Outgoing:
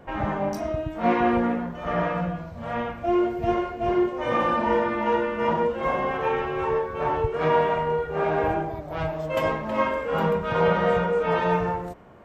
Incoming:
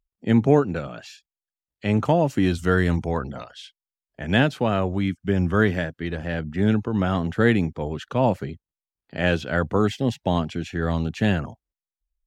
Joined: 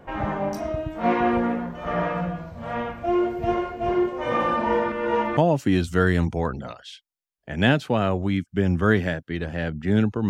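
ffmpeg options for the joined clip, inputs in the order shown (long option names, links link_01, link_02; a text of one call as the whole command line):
ffmpeg -i cue0.wav -i cue1.wav -filter_complex "[0:a]apad=whole_dur=10.29,atrim=end=10.29,asplit=2[link_01][link_02];[link_01]atrim=end=4.922[link_03];[link_02]atrim=start=4.918:end=5.372,asetpts=PTS-STARTPTS,areverse[link_04];[1:a]atrim=start=2.078:end=7[link_05];[link_03][link_04]acrossfade=duration=0.004:curve1=hsin:curve2=hsin[link_06];[link_06][link_05]acrossfade=duration=0.004:curve1=hsin:curve2=hsin" out.wav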